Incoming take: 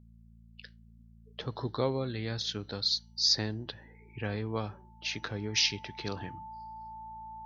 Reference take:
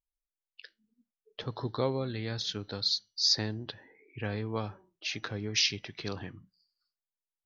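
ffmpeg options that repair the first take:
ffmpeg -i in.wav -af "bandreject=frequency=56.5:width_type=h:width=4,bandreject=frequency=113:width_type=h:width=4,bandreject=frequency=169.5:width_type=h:width=4,bandreject=frequency=226:width_type=h:width=4,bandreject=frequency=880:width=30,asetnsamples=nb_out_samples=441:pad=0,asendcmd='7.1 volume volume 8dB',volume=0dB" out.wav

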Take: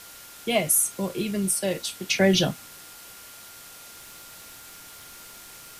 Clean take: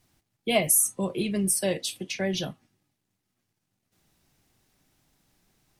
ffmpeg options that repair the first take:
ffmpeg -i in.wav -af "bandreject=frequency=1400:width=30,afwtdn=0.0063,asetnsamples=nb_out_samples=441:pad=0,asendcmd='2.09 volume volume -9dB',volume=0dB" out.wav

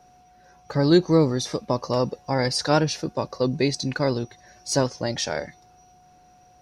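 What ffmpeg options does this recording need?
ffmpeg -i in.wav -af "bandreject=frequency=730:width=30" out.wav

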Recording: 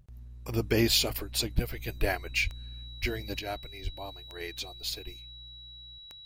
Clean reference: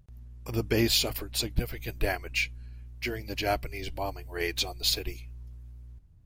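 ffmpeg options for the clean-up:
ffmpeg -i in.wav -filter_complex "[0:a]adeclick=threshold=4,bandreject=frequency=3900:width=30,asplit=3[link_01][link_02][link_03];[link_01]afade=type=out:start_time=2.43:duration=0.02[link_04];[link_02]highpass=frequency=140:width=0.5412,highpass=frequency=140:width=1.3066,afade=type=in:start_time=2.43:duration=0.02,afade=type=out:start_time=2.55:duration=0.02[link_05];[link_03]afade=type=in:start_time=2.55:duration=0.02[link_06];[link_04][link_05][link_06]amix=inputs=3:normalize=0,asplit=3[link_07][link_08][link_09];[link_07]afade=type=out:start_time=3.01:duration=0.02[link_10];[link_08]highpass=frequency=140:width=0.5412,highpass=frequency=140:width=1.3066,afade=type=in:start_time=3.01:duration=0.02,afade=type=out:start_time=3.13:duration=0.02[link_11];[link_09]afade=type=in:start_time=3.13:duration=0.02[link_12];[link_10][link_11][link_12]amix=inputs=3:normalize=0,asplit=3[link_13][link_14][link_15];[link_13]afade=type=out:start_time=3.83:duration=0.02[link_16];[link_14]highpass=frequency=140:width=0.5412,highpass=frequency=140:width=1.3066,afade=type=in:start_time=3.83:duration=0.02,afade=type=out:start_time=3.95:duration=0.02[link_17];[link_15]afade=type=in:start_time=3.95:duration=0.02[link_18];[link_16][link_17][link_18]amix=inputs=3:normalize=0,asetnsamples=nb_out_samples=441:pad=0,asendcmd='3.39 volume volume 8.5dB',volume=0dB" out.wav

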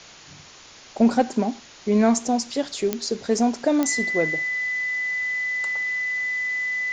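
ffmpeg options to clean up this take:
ffmpeg -i in.wav -af "adeclick=threshold=4,bandreject=frequency=2000:width=30,afwtdn=0.0079" out.wav

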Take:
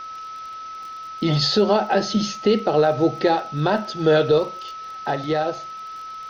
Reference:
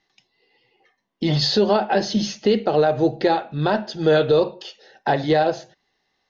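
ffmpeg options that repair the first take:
ffmpeg -i in.wav -af "adeclick=threshold=4,bandreject=frequency=1300:width=30,afwtdn=0.0063,asetnsamples=nb_out_samples=441:pad=0,asendcmd='4.38 volume volume 4.5dB',volume=0dB" out.wav

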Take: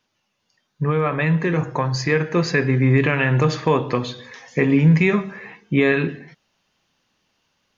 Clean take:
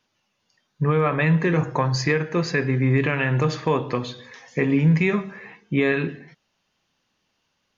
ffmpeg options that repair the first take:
ffmpeg -i in.wav -af "asetnsamples=nb_out_samples=441:pad=0,asendcmd='2.12 volume volume -3.5dB',volume=0dB" out.wav

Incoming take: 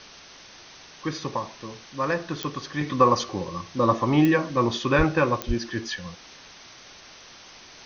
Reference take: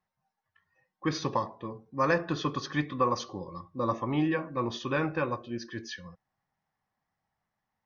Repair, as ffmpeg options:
ffmpeg -i in.wav -filter_complex "[0:a]adeclick=threshold=4,asplit=3[link_01][link_02][link_03];[link_01]afade=type=out:start_time=4.97:duration=0.02[link_04];[link_02]highpass=frequency=140:width=0.5412,highpass=frequency=140:width=1.3066,afade=type=in:start_time=4.97:duration=0.02,afade=type=out:start_time=5.09:duration=0.02[link_05];[link_03]afade=type=in:start_time=5.09:duration=0.02[link_06];[link_04][link_05][link_06]amix=inputs=3:normalize=0,asplit=3[link_07][link_08][link_09];[link_07]afade=type=out:start_time=5.47:duration=0.02[link_10];[link_08]highpass=frequency=140:width=0.5412,highpass=frequency=140:width=1.3066,afade=type=in:start_time=5.47:duration=0.02,afade=type=out:start_time=5.59:duration=0.02[link_11];[link_09]afade=type=in:start_time=5.59:duration=0.02[link_12];[link_10][link_11][link_12]amix=inputs=3:normalize=0,afwtdn=0.0079,asetnsamples=nb_out_samples=441:pad=0,asendcmd='2.81 volume volume -8.5dB',volume=0dB" out.wav

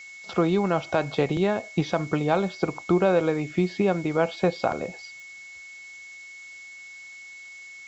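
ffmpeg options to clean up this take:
ffmpeg -i in.wav -af "adeclick=threshold=4,bandreject=frequency=2200:width=30,afftdn=noise_reduction=26:noise_floor=-44" out.wav

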